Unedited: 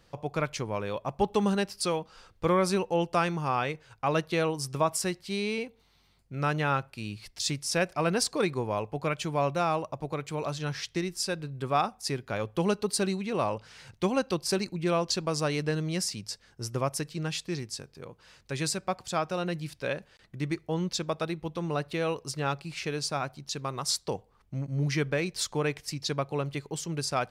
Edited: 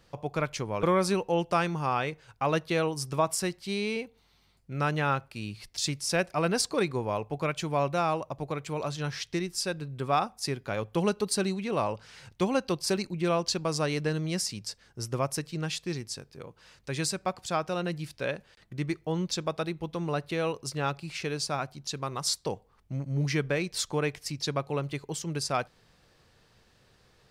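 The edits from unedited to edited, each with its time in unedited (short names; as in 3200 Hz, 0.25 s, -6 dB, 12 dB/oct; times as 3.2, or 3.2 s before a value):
0.83–2.45 cut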